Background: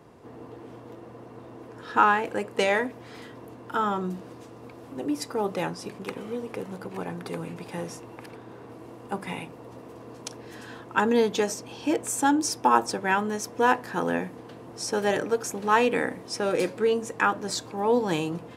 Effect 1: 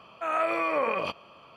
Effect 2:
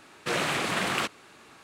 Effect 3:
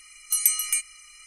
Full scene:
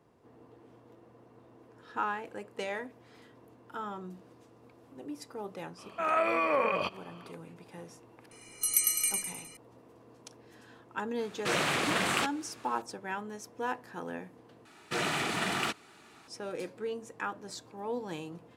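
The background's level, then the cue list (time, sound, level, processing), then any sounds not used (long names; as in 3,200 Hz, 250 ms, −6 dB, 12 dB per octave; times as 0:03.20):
background −13 dB
0:05.77: mix in 1 −1 dB, fades 0.02 s
0:08.31: mix in 3 −6.5 dB + repeating echo 103 ms, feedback 47%, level −3 dB
0:11.19: mix in 2 −1.5 dB
0:14.65: overwrite with 2 −2.5 dB + notch comb filter 540 Hz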